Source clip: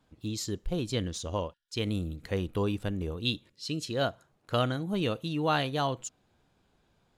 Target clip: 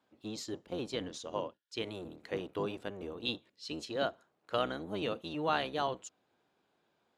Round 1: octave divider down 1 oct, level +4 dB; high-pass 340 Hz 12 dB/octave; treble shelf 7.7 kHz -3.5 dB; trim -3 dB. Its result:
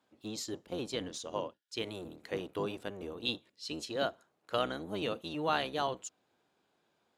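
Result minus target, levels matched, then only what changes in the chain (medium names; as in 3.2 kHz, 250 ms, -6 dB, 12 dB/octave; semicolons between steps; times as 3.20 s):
8 kHz band +4.0 dB
change: treble shelf 7.7 kHz -13.5 dB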